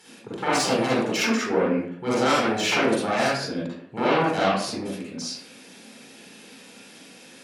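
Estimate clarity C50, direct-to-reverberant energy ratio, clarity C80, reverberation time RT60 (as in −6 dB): −4.0 dB, −7.5 dB, 3.0 dB, 0.60 s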